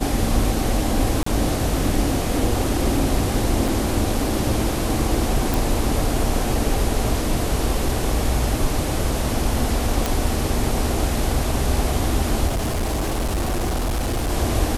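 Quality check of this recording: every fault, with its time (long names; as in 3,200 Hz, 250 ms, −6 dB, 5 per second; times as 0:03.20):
0:01.23–0:01.26: drop-out 34 ms
0:03.68: drop-out 3.9 ms
0:05.54: click
0:10.06: click
0:12.47–0:14.32: clipping −19 dBFS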